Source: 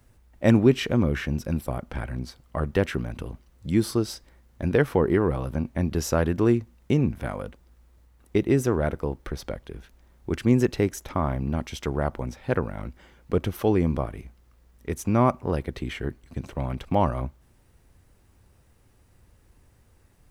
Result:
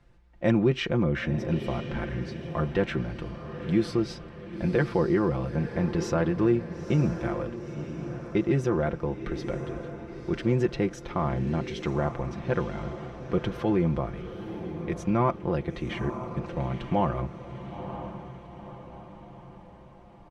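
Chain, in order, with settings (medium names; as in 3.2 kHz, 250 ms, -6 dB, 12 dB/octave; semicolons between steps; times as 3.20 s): low-pass 4 kHz 12 dB/octave; comb 5.8 ms, depth 62%; in parallel at +1.5 dB: peak limiter -16.5 dBFS, peak gain reduction 10 dB; on the sum: echo that smears into a reverb 946 ms, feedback 50%, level -10 dB; trim -8.5 dB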